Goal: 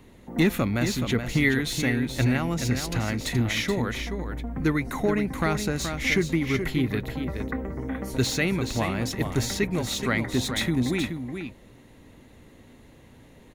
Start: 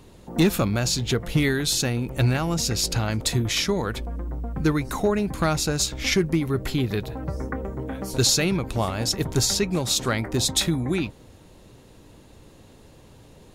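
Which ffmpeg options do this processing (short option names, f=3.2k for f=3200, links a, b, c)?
-filter_complex "[0:a]equalizer=f=250:t=o:w=0.33:g=7,equalizer=f=2k:t=o:w=0.33:g=10,equalizer=f=5k:t=o:w=0.33:g=-7,equalizer=f=8k:t=o:w=0.33:g=-5,acrossover=split=590|4400[a][b][c];[c]asoftclip=type=tanh:threshold=-28dB[d];[a][b][d]amix=inputs=3:normalize=0,aecho=1:1:425:0.422,volume=-3.5dB"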